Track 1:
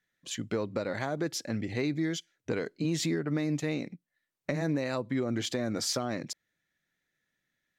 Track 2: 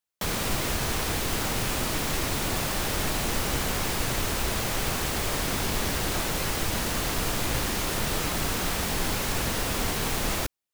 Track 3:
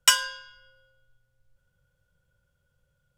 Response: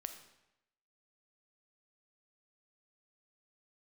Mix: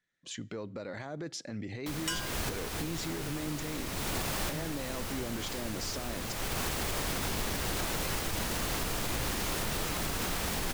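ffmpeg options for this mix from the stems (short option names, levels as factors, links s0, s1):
-filter_complex "[0:a]lowpass=f=9200:w=0.5412,lowpass=f=9200:w=1.3066,alimiter=level_in=1.5:limit=0.0631:level=0:latency=1:release=25,volume=0.668,volume=0.668,asplit=3[s0][s1][s2];[s1]volume=0.168[s3];[1:a]adelay=1650,volume=0.668[s4];[2:a]asoftclip=type=tanh:threshold=0.335,adelay=2000,volume=0.299[s5];[s2]apad=whole_len=546377[s6];[s4][s6]sidechaincompress=threshold=0.00708:ratio=8:attack=16:release=526[s7];[3:a]atrim=start_sample=2205[s8];[s3][s8]afir=irnorm=-1:irlink=0[s9];[s0][s7][s5][s9]amix=inputs=4:normalize=0,alimiter=limit=0.0708:level=0:latency=1:release=55"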